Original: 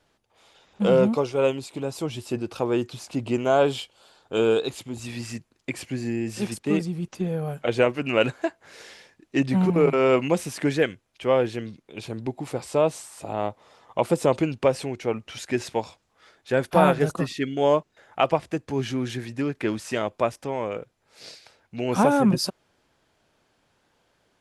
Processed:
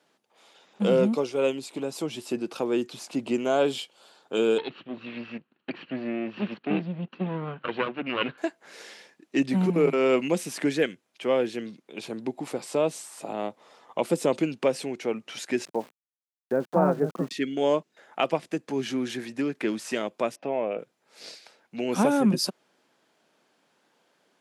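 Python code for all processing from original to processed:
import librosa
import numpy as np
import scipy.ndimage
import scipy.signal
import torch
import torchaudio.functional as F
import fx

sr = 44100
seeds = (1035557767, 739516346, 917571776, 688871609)

y = fx.chain(x, sr, fx.lower_of_two(delay_ms=0.7),
    fx.steep_lowpass(hz=3500.0, slope=36), at=(4.58, 8.38))
y = fx.chain(y, sr, fx.lowpass(hz=1300.0, slope=24),
    fx.sample_gate(floor_db=-42.5), at=(15.65, 17.31))
y = fx.chain(y, sr, fx.air_absorb(metres=270.0),
    fx.small_body(hz=(660.0, 2600.0), ring_ms=20, db=12), at=(20.36, 20.79))
y = scipy.signal.sosfilt(scipy.signal.butter(4, 180.0, 'highpass', fs=sr, output='sos'), y)
y = fx.dynamic_eq(y, sr, hz=940.0, q=0.75, threshold_db=-34.0, ratio=4.0, max_db=-6)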